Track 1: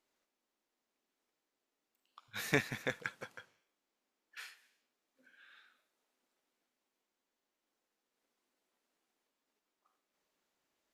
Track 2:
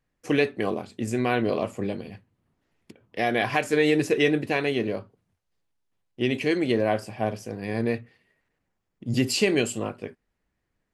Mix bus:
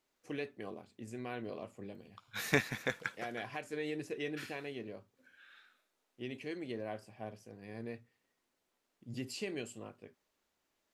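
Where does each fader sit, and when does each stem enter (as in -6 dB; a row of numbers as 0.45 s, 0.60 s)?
+1.5 dB, -18.0 dB; 0.00 s, 0.00 s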